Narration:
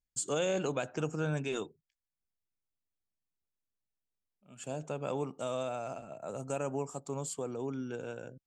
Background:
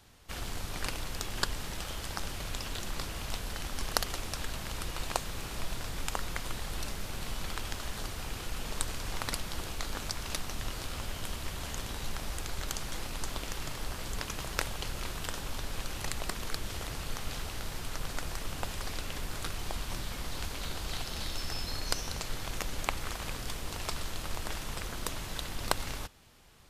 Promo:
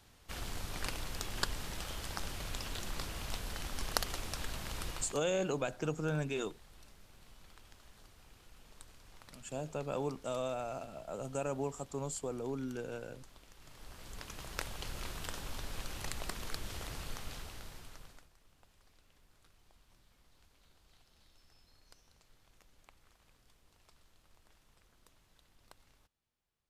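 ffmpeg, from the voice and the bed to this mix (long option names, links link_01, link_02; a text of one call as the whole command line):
ffmpeg -i stem1.wav -i stem2.wav -filter_complex "[0:a]adelay=4850,volume=-1.5dB[link_01];[1:a]volume=13dB,afade=type=out:start_time=4.9:duration=0.3:silence=0.125893,afade=type=in:start_time=13.57:duration=1.41:silence=0.149624,afade=type=out:start_time=16.99:duration=1.3:silence=0.0562341[link_02];[link_01][link_02]amix=inputs=2:normalize=0" out.wav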